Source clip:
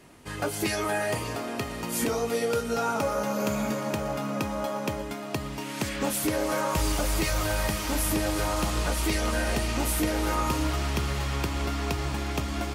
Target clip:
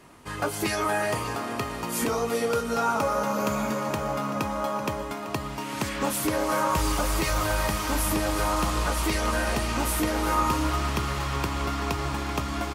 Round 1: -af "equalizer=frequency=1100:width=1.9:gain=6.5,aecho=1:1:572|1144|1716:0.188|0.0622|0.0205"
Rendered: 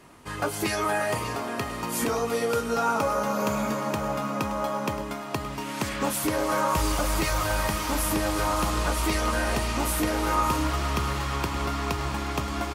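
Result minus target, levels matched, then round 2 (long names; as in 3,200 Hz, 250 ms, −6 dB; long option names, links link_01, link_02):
echo 189 ms late
-af "equalizer=frequency=1100:width=1.9:gain=6.5,aecho=1:1:383|766|1149:0.188|0.0622|0.0205"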